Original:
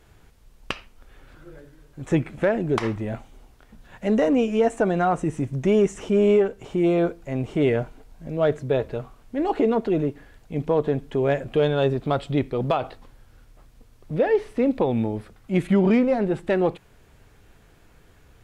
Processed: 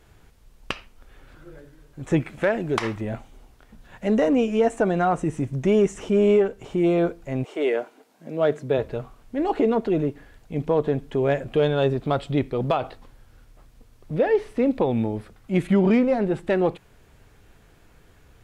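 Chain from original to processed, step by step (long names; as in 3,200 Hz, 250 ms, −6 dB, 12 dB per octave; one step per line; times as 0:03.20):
0:02.20–0:03.01: tilt shelving filter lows −3.5 dB, about 710 Hz
0:07.43–0:08.77: high-pass filter 430 Hz → 120 Hz 24 dB per octave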